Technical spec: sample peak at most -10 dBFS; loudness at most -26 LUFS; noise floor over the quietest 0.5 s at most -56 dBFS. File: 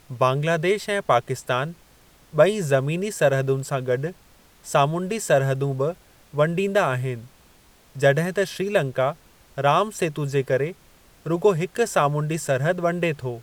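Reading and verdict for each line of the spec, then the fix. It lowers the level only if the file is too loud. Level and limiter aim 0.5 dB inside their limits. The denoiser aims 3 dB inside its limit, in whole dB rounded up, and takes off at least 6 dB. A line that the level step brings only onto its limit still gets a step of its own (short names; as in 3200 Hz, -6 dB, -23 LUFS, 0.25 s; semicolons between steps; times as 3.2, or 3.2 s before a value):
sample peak -4.5 dBFS: fail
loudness -23.0 LUFS: fail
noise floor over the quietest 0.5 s -54 dBFS: fail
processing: gain -3.5 dB; limiter -10.5 dBFS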